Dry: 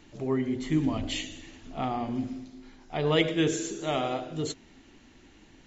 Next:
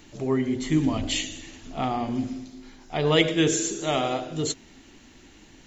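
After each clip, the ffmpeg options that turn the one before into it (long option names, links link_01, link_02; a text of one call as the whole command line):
ffmpeg -i in.wav -af "highshelf=frequency=5900:gain=10,volume=3.5dB" out.wav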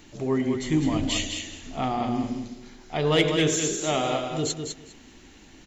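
ffmpeg -i in.wav -filter_complex "[0:a]asoftclip=type=tanh:threshold=-11.5dB,asplit=2[link_01][link_02];[link_02]aecho=0:1:203|406|609:0.501|0.0852|0.0145[link_03];[link_01][link_03]amix=inputs=2:normalize=0" out.wav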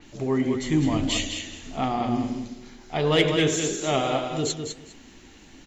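ffmpeg -i in.wav -af "flanger=delay=3.5:depth=5.3:regen=82:speed=1.6:shape=sinusoidal,adynamicequalizer=threshold=0.00708:dfrequency=4700:dqfactor=0.7:tfrequency=4700:tqfactor=0.7:attack=5:release=100:ratio=0.375:range=2.5:mode=cutabove:tftype=highshelf,volume=5.5dB" out.wav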